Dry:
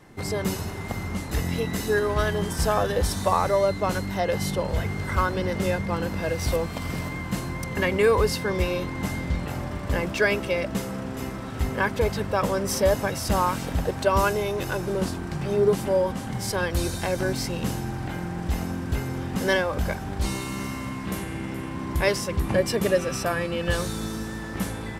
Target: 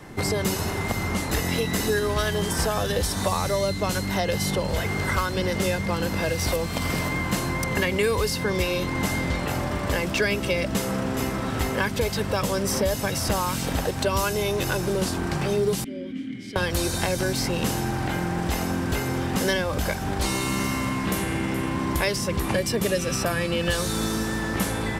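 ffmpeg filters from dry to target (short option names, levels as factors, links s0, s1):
-filter_complex "[0:a]asettb=1/sr,asplit=3[s0][s1][s2];[s0]atrim=end=15.844[s3];[s1]atrim=start=15.84:end=16.56,asetpts=PTS-STARTPTS,afade=t=in:d=0.004:c=qsin,afade=t=out:st=0.716:d=0.004:c=qsin,asplit=3[s4][s5][s6];[s4]bandpass=f=270:t=q:w=8,volume=1[s7];[s5]bandpass=f=2290:t=q:w=8,volume=0.501[s8];[s6]bandpass=f=3010:t=q:w=8,volume=0.355[s9];[s7][s8][s9]amix=inputs=3:normalize=0[s10];[s2]atrim=start=16.556[s11];[s3][s10]acrossfade=d=0.004:c1=hsin:c2=qsin[s12];[s12][s11]acrossfade=d=0.004:c1=qsin:c2=hsin,acrossover=split=280|2700[s13][s14][s15];[s13]acompressor=threshold=0.0158:ratio=4[s16];[s14]acompressor=threshold=0.0178:ratio=4[s17];[s15]acompressor=threshold=0.0141:ratio=4[s18];[s16][s17][s18]amix=inputs=3:normalize=0,volume=2.66"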